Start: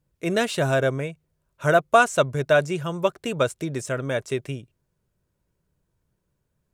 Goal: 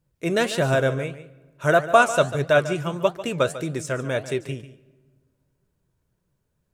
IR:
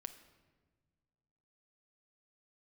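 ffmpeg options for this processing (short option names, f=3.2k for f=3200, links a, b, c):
-filter_complex "[0:a]flanger=delay=5:depth=8.5:regen=75:speed=1.6:shape=triangular,asplit=2[a][b];[1:a]atrim=start_sample=2205,adelay=145[c];[b][c]afir=irnorm=-1:irlink=0,volume=-9.5dB[d];[a][d]amix=inputs=2:normalize=0,volume=5dB"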